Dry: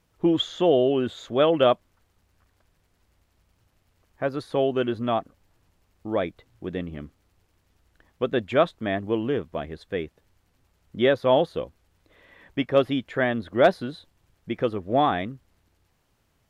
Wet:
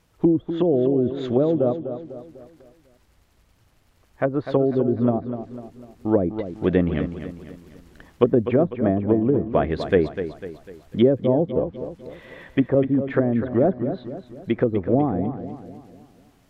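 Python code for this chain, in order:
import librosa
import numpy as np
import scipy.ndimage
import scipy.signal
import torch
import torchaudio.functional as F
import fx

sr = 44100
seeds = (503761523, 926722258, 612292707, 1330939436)

p1 = fx.env_lowpass_down(x, sr, base_hz=340.0, full_db=-21.0)
p2 = fx.rider(p1, sr, range_db=4, speed_s=0.5)
p3 = p2 + fx.echo_feedback(p2, sr, ms=249, feedback_pct=45, wet_db=-10, dry=0)
y = p3 * librosa.db_to_amplitude(8.5)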